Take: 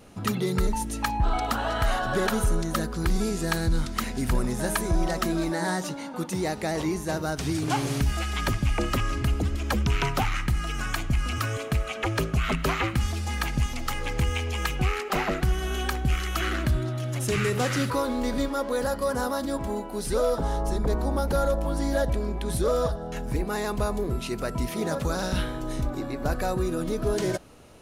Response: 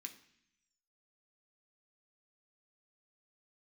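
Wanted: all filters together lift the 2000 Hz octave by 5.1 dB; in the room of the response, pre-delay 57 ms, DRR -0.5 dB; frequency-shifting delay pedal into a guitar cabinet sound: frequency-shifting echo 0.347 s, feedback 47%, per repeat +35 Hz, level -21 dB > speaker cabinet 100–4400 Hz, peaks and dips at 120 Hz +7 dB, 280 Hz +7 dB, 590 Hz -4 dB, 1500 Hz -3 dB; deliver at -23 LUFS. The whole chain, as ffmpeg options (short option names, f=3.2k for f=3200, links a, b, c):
-filter_complex "[0:a]equalizer=f=2k:t=o:g=8,asplit=2[a][b];[1:a]atrim=start_sample=2205,adelay=57[c];[b][c]afir=irnorm=-1:irlink=0,volume=5.5dB[d];[a][d]amix=inputs=2:normalize=0,asplit=4[e][f][g][h];[f]adelay=347,afreqshift=35,volume=-21dB[i];[g]adelay=694,afreqshift=70,volume=-27.6dB[j];[h]adelay=1041,afreqshift=105,volume=-34.1dB[k];[e][i][j][k]amix=inputs=4:normalize=0,highpass=100,equalizer=f=120:t=q:w=4:g=7,equalizer=f=280:t=q:w=4:g=7,equalizer=f=590:t=q:w=4:g=-4,equalizer=f=1.5k:t=q:w=4:g=-3,lowpass=f=4.4k:w=0.5412,lowpass=f=4.4k:w=1.3066,volume=0.5dB"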